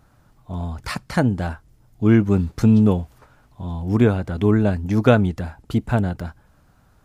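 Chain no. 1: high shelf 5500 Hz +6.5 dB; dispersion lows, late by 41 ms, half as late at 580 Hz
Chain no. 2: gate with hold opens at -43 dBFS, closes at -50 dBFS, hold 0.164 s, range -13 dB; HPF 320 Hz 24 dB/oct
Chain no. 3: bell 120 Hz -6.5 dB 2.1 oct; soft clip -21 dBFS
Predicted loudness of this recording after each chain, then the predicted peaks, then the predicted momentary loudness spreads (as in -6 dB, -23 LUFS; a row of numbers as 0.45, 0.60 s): -20.0, -26.0, -29.0 LUFS; -2.5, -4.0, -21.0 dBFS; 16, 18, 12 LU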